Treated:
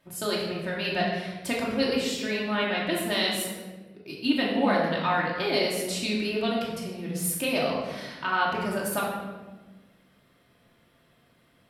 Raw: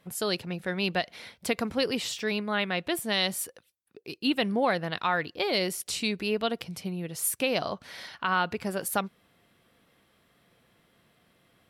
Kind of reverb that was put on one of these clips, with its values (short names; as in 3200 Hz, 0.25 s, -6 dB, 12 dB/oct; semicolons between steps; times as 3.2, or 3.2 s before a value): shoebox room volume 880 m³, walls mixed, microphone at 2.7 m; gain -4 dB